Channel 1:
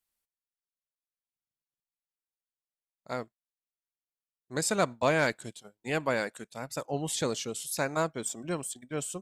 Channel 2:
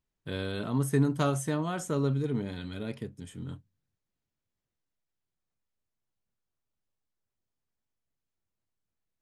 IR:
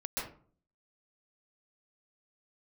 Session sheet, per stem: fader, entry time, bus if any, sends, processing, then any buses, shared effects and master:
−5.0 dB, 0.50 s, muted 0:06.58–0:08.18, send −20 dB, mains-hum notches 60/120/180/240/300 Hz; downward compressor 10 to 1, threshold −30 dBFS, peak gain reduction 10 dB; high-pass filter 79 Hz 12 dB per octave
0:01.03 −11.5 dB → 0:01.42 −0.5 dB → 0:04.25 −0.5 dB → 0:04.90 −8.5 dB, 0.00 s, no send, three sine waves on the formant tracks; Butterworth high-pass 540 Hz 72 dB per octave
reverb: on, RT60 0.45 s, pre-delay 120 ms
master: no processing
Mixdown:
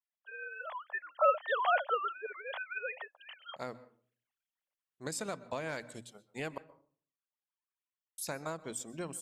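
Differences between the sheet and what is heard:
stem 1: missing high-pass filter 79 Hz 12 dB per octave
stem 2 −11.5 dB → −2.5 dB

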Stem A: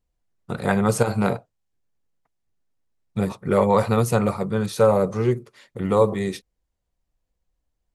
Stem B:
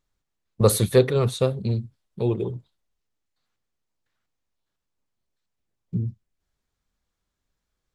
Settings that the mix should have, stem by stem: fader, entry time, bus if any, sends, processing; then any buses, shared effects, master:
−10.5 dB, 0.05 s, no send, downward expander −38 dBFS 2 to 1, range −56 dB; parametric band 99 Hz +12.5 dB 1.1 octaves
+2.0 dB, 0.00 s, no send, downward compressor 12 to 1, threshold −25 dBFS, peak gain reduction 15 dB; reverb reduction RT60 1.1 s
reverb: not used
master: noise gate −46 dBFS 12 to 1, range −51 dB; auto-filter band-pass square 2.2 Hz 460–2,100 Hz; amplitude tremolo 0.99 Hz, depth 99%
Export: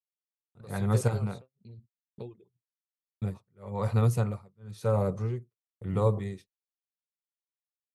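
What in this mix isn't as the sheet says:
stem B +2.0 dB → −7.5 dB
master: missing auto-filter band-pass square 2.2 Hz 460–2,100 Hz

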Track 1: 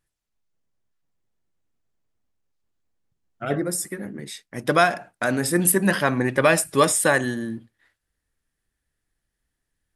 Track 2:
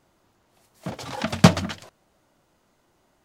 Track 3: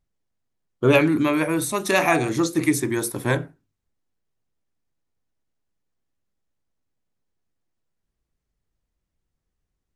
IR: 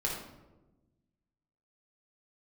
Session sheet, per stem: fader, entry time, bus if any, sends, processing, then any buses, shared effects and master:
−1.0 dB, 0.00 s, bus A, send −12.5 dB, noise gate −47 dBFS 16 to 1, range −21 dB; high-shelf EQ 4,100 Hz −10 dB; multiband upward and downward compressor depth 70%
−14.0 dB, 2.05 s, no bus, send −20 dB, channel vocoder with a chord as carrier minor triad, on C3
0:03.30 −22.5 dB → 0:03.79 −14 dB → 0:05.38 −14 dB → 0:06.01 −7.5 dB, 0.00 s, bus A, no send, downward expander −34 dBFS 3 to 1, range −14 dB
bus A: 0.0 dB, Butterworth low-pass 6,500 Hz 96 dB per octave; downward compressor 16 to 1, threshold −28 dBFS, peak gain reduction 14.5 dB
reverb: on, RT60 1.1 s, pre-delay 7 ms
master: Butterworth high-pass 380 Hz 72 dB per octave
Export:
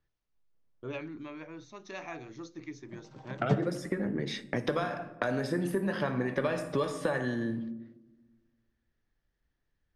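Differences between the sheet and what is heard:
stem 1: send −12.5 dB → −20.5 dB
master: missing Butterworth high-pass 380 Hz 72 dB per octave

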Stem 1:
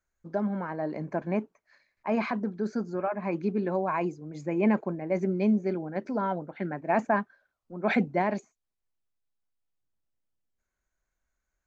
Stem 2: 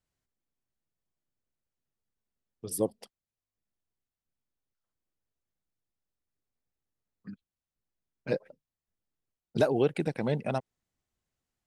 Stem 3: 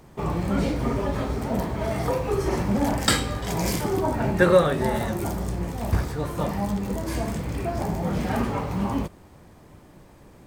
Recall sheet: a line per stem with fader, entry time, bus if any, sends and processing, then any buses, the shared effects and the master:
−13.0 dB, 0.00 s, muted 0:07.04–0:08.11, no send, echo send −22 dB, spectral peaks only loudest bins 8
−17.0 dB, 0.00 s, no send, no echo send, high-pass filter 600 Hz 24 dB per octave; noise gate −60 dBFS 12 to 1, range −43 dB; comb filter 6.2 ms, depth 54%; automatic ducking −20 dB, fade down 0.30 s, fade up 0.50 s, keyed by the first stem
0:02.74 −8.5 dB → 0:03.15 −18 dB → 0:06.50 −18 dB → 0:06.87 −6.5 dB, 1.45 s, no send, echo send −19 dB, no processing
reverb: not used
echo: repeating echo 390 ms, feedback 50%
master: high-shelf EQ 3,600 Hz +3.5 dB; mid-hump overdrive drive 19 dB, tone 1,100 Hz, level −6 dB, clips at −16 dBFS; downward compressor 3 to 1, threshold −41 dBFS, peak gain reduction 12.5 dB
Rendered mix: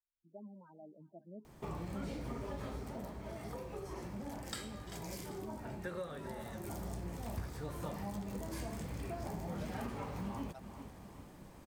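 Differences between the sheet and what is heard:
stem 1 −13.0 dB → −22.0 dB
master: missing mid-hump overdrive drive 19 dB, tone 1,100 Hz, level −6 dB, clips at −16 dBFS

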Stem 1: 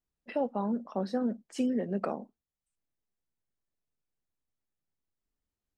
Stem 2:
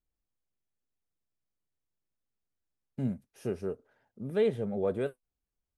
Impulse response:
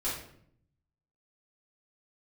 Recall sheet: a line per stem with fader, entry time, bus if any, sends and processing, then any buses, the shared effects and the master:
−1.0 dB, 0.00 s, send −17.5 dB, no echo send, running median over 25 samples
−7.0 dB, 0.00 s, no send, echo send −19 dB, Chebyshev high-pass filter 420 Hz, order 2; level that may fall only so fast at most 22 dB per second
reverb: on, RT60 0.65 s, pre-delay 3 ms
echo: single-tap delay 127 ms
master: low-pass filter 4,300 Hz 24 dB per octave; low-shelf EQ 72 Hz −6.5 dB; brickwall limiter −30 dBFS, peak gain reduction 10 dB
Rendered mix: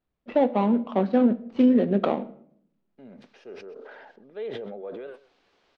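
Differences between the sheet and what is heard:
stem 1 −1.0 dB → +9.5 dB
master: missing brickwall limiter −30 dBFS, peak gain reduction 10 dB

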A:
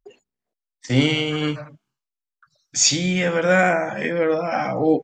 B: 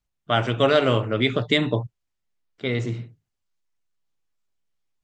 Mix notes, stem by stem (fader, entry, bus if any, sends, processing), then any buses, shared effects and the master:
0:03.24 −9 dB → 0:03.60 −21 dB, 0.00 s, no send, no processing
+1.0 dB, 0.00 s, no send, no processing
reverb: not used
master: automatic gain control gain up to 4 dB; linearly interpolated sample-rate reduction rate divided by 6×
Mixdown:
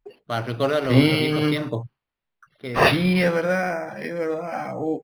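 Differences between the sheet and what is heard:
stem A −9.0 dB → +2.5 dB
stem B +1.0 dB → −5.0 dB

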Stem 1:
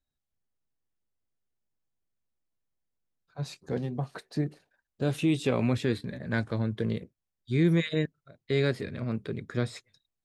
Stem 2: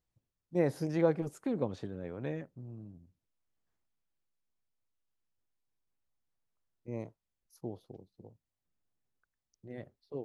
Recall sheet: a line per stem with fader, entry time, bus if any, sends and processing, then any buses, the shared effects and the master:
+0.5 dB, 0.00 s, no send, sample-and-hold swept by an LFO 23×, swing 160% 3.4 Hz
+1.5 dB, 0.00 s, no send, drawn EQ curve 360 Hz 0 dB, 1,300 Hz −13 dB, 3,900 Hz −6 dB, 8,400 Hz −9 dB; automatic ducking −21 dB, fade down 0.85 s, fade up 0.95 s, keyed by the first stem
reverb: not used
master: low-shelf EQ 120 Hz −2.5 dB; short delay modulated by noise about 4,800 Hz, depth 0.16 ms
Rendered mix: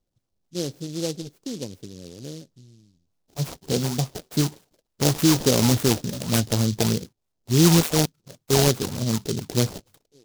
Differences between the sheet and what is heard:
stem 1 +0.5 dB → +7.5 dB
master: missing low-shelf EQ 120 Hz −2.5 dB

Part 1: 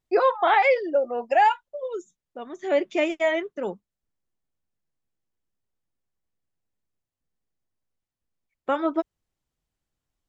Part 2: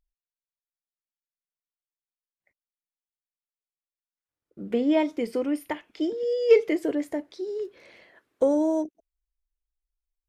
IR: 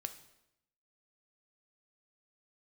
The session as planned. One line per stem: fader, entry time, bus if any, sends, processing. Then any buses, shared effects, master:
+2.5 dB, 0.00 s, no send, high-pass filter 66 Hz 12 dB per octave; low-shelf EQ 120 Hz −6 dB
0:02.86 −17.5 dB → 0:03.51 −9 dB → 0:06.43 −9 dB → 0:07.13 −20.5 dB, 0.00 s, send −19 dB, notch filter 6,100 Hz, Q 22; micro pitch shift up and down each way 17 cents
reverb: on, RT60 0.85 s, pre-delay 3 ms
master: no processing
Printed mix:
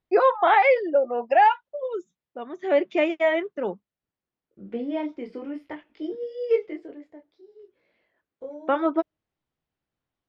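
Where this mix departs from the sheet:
stem 2 −17.5 dB → −10.5 dB
master: extra high-frequency loss of the air 200 metres

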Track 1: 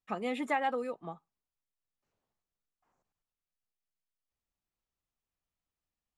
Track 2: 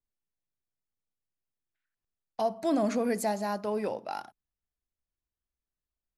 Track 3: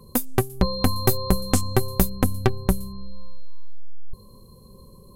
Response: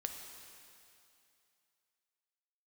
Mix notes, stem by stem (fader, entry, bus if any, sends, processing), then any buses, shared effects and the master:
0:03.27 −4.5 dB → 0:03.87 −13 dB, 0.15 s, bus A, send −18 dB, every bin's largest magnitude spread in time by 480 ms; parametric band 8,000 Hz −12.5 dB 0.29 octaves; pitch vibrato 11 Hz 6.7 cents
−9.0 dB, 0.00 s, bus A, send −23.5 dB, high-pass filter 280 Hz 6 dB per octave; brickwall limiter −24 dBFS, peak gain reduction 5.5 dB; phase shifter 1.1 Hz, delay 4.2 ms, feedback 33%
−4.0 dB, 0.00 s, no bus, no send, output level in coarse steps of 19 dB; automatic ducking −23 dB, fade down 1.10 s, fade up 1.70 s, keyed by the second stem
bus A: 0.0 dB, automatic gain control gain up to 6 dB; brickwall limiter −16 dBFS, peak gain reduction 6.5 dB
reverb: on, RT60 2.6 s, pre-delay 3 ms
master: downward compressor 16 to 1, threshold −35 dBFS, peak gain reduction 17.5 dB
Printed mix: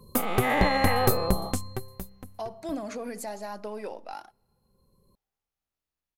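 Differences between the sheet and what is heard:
stem 3: missing output level in coarse steps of 19 dB
master: missing downward compressor 16 to 1, threshold −35 dBFS, peak gain reduction 17.5 dB

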